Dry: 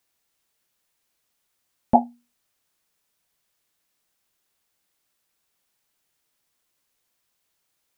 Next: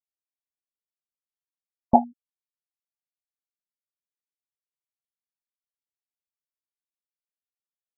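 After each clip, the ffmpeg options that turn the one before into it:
-af "afftfilt=real='re*gte(hypot(re,im),0.0316)':imag='im*gte(hypot(re,im),0.0316)':win_size=1024:overlap=0.75"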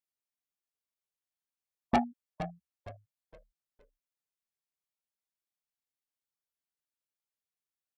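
-filter_complex "[0:a]asoftclip=type=tanh:threshold=-18.5dB,asplit=5[a][b][c][d][e];[b]adelay=464,afreqshift=-68,volume=-11dB[f];[c]adelay=928,afreqshift=-136,volume=-20.4dB[g];[d]adelay=1392,afreqshift=-204,volume=-29.7dB[h];[e]adelay=1856,afreqshift=-272,volume=-39.1dB[i];[a][f][g][h][i]amix=inputs=5:normalize=0,volume=-1.5dB"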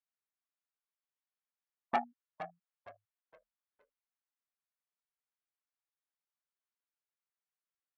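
-af "bandpass=f=1.3k:t=q:w=1:csg=0"

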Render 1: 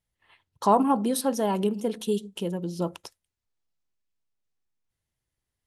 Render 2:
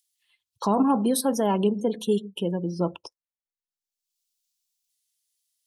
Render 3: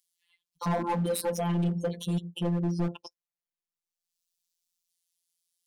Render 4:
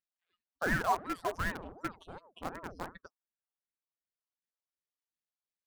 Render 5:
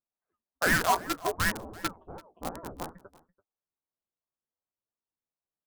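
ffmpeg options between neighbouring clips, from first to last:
-filter_complex "[0:a]afftdn=nr=29:nf=-43,acrossover=split=330|3400[a][b][c];[b]alimiter=limit=-20dB:level=0:latency=1:release=14[d];[c]acompressor=mode=upward:threshold=-50dB:ratio=2.5[e];[a][d][e]amix=inputs=3:normalize=0,volume=3dB"
-af "equalizer=f=130:t=o:w=1:g=6,afftfilt=real='hypot(re,im)*cos(PI*b)':imag='0':win_size=1024:overlap=0.75,volume=23.5dB,asoftclip=hard,volume=-23.5dB"
-filter_complex "[0:a]bandpass=f=990:t=q:w=2.6:csg=0,asplit=2[a][b];[b]acrusher=bits=5:mix=0:aa=0.000001,volume=-7dB[c];[a][c]amix=inputs=2:normalize=0,aeval=exprs='val(0)*sin(2*PI*470*n/s+470*0.8/2.7*sin(2*PI*2.7*n/s))':c=same,volume=4.5dB"
-filter_complex "[0:a]acrossover=split=1300[a][b];[a]flanger=delay=9:depth=7.9:regen=30:speed=0.61:shape=sinusoidal[c];[b]acrusher=bits=5:mix=0:aa=0.000001[d];[c][d]amix=inputs=2:normalize=0,aecho=1:1:336:0.0841,volume=8dB"

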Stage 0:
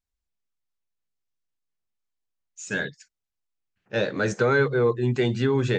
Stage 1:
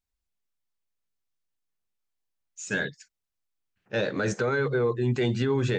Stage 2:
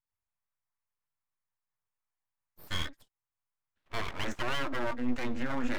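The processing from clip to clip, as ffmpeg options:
-af "alimiter=limit=-17dB:level=0:latency=1:release=32"
-af "equalizer=f=125:t=o:w=1:g=11,equalizer=f=250:t=o:w=1:g=-8,equalizer=f=1k:t=o:w=1:g=12,equalizer=f=2k:t=o:w=1:g=7,equalizer=f=4k:t=o:w=1:g=-10,aeval=exprs='abs(val(0))':c=same,volume=-9dB"

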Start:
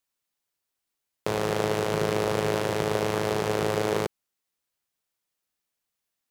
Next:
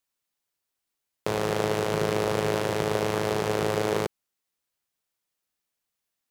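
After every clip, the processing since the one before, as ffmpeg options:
-af anull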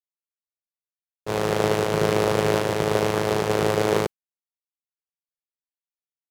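-af "agate=range=-33dB:threshold=-21dB:ratio=3:detection=peak,volume=7.5dB"

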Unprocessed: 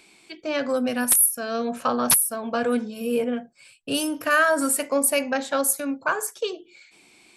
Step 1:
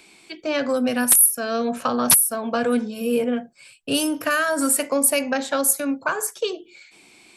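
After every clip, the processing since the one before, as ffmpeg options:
-filter_complex "[0:a]acrossover=split=290|3000[a][b][c];[b]acompressor=threshold=-23dB:ratio=6[d];[a][d][c]amix=inputs=3:normalize=0,volume=3.5dB"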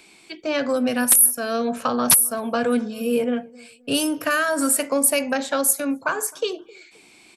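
-filter_complex "[0:a]asplit=2[a][b];[b]adelay=262,lowpass=f=890:p=1,volume=-22dB,asplit=2[c][d];[d]adelay=262,lowpass=f=890:p=1,volume=0.32[e];[a][c][e]amix=inputs=3:normalize=0"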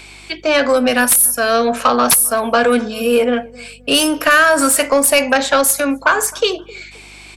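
-filter_complex "[0:a]asplit=2[a][b];[b]highpass=f=720:p=1,volume=18dB,asoftclip=type=tanh:threshold=-1dB[c];[a][c]amix=inputs=2:normalize=0,lowpass=f=5.5k:p=1,volume=-6dB,aeval=exprs='val(0)+0.00501*(sin(2*PI*50*n/s)+sin(2*PI*2*50*n/s)/2+sin(2*PI*3*50*n/s)/3+sin(2*PI*4*50*n/s)/4+sin(2*PI*5*50*n/s)/5)':c=same,volume=1.5dB"

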